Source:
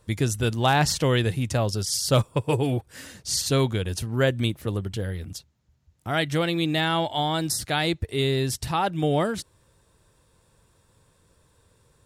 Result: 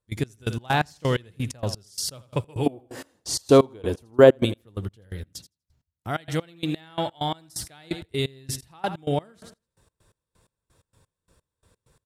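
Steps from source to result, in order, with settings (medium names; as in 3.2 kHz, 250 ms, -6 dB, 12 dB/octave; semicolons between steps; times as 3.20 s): 2.66–4.45 s: high-order bell 550 Hz +12 dB 2.5 oct; feedback delay 82 ms, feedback 40%, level -14 dB; trance gate ".x..x.x." 129 bpm -24 dB; trim -1 dB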